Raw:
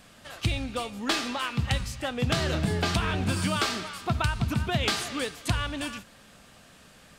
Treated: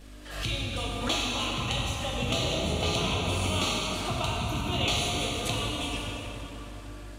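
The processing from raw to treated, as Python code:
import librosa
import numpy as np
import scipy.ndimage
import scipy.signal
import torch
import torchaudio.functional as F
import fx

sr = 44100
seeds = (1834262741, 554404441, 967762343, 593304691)

y = fx.low_shelf(x, sr, hz=460.0, db=-10.5)
y = fx.dmg_buzz(y, sr, base_hz=50.0, harmonics=12, level_db=-46.0, tilt_db=-6, odd_only=False)
y = fx.env_flanger(y, sr, rest_ms=8.6, full_db=-32.5)
y = fx.rev_plate(y, sr, seeds[0], rt60_s=4.4, hf_ratio=0.55, predelay_ms=0, drr_db=-4.5)
y = fx.pre_swell(y, sr, db_per_s=75.0)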